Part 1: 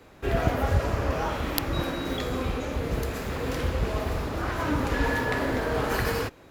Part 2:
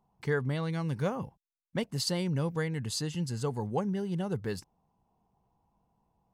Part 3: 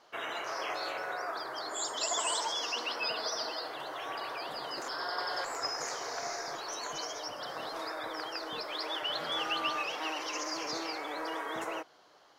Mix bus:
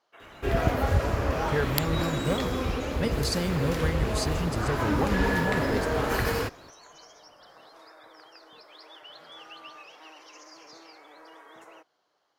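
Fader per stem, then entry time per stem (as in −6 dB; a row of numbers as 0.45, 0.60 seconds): 0.0, +1.5, −13.0 decibels; 0.20, 1.25, 0.00 seconds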